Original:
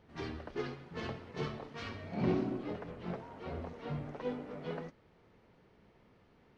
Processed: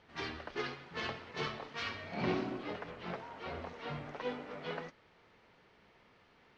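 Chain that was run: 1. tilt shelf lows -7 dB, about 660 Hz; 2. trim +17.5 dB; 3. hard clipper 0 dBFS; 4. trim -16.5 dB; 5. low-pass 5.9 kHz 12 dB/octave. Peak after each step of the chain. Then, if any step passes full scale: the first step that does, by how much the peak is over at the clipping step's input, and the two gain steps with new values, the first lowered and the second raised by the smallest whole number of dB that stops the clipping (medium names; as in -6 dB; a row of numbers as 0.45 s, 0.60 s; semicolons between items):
-22.5 dBFS, -5.0 dBFS, -5.0 dBFS, -21.5 dBFS, -21.5 dBFS; nothing clips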